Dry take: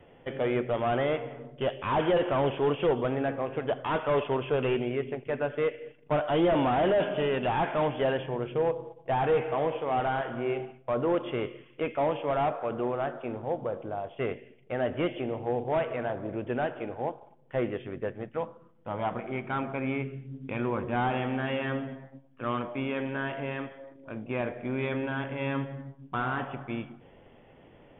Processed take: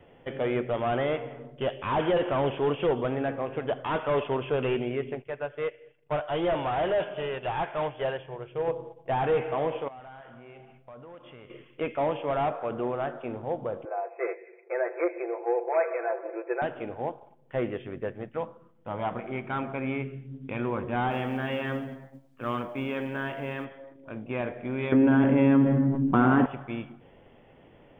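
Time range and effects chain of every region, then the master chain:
5.22–8.68 bell 240 Hz -13 dB 0.64 oct + upward expander, over -39 dBFS
9.88–11.5 bell 360 Hz -8 dB 0.66 oct + compressor 3:1, threshold -49 dBFS
13.85–16.62 comb 5.9 ms, depth 79% + upward compressor, threshold -39 dBFS + brick-wall FIR band-pass 340–2600 Hz
21.11–23.65 de-hum 335.4 Hz, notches 7 + companded quantiser 8-bit
24.92–26.46 Bessel low-pass 2000 Hz + bell 260 Hz +12.5 dB 1.3 oct + fast leveller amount 70%
whole clip: dry

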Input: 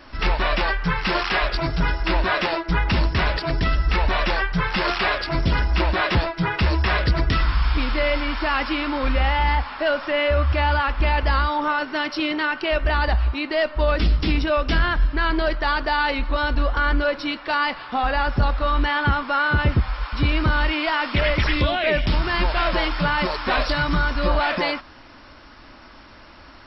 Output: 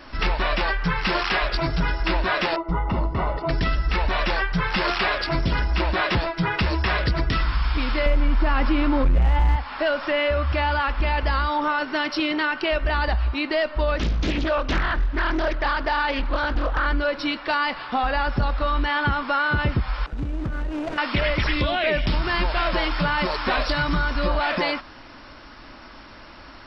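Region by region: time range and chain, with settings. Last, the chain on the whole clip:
2.56–3.49 polynomial smoothing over 65 samples + tilt shelf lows -3 dB, about 640 Hz
8.06–9.56 tilt -3 dB/oct + hard clip -6.5 dBFS + fast leveller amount 50%
13.97–16.86 air absorption 110 m + notches 50/100/150/200/250/300/350/400/450 Hz + Doppler distortion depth 0.81 ms
20.06–20.98 median filter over 41 samples + compressor, threshold -25 dBFS + air absorption 86 m
whole clip: bell 77 Hz -4.5 dB 0.38 oct; compressor 2.5:1, threshold -22 dBFS; gain +2 dB

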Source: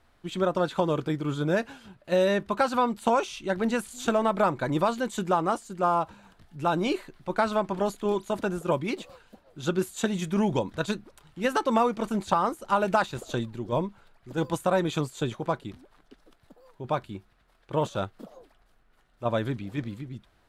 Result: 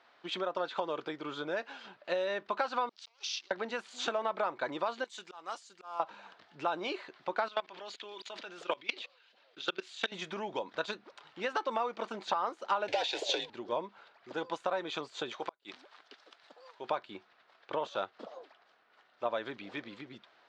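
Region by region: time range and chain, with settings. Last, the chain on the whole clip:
2.89–3.51 negative-ratio compressor -36 dBFS + backlash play -35.5 dBFS + band-pass 5300 Hz, Q 2.8
5.04–6 pre-emphasis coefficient 0.9 + auto swell 0.228 s
7.48–10.12 weighting filter D + level quantiser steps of 23 dB
12.88–13.5 overdrive pedal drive 24 dB, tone 6100 Hz, clips at -10 dBFS + frequency shift -69 Hz + fixed phaser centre 510 Hz, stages 4
15.31–16.9 flipped gate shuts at -21 dBFS, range -42 dB + tilt +2.5 dB/oct
whole clip: LPF 5100 Hz 24 dB/oct; compressor 6:1, threshold -32 dBFS; HPF 520 Hz 12 dB/oct; gain +4.5 dB

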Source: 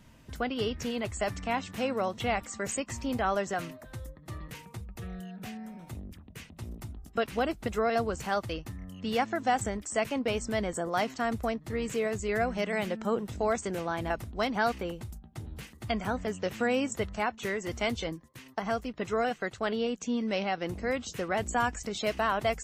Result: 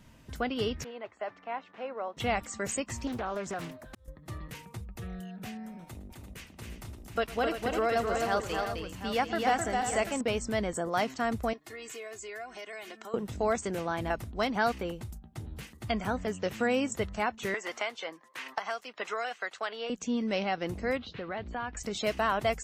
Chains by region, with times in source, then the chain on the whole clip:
0.84–2.17 HPF 570 Hz + tape spacing loss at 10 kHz 43 dB
3.07–4.08 compressor 3:1, threshold -32 dBFS + auto swell 0.543 s + Doppler distortion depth 0.53 ms
5.84–10.21 bell 120 Hz -5.5 dB 2.5 oct + tapped delay 0.11/0.26/0.297/0.343/0.738 s -19.5/-4/-18.5/-9.5/-10 dB
11.53–13.14 HPF 970 Hz 6 dB/oct + comb 2.8 ms, depth 71% + compressor 3:1, threshold -41 dBFS
17.54–19.9 HPF 770 Hz + high shelf 8600 Hz -11.5 dB + three-band squash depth 100%
20.97–21.77 Chebyshev low-pass 4200 Hz, order 4 + compressor 2:1, threshold -37 dBFS
whole clip: dry

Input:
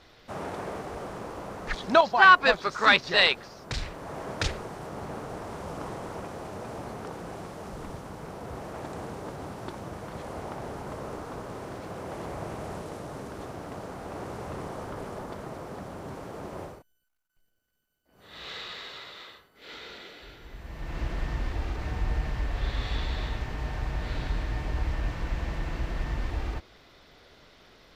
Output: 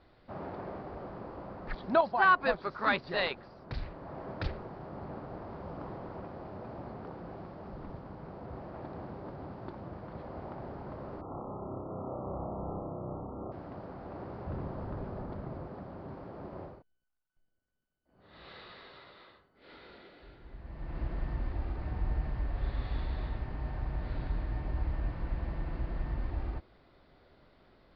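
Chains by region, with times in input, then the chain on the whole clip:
11.21–13.52 brick-wall FIR low-pass 1400 Hz + flutter echo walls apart 5.3 m, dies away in 0.73 s
14.46–15.68 low shelf 170 Hz +9.5 dB + Doppler distortion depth 0.33 ms
whole clip: elliptic low-pass 4700 Hz, stop band 40 dB; bell 3400 Hz -12 dB 2.5 oct; notch 450 Hz, Q 12; gain -2.5 dB

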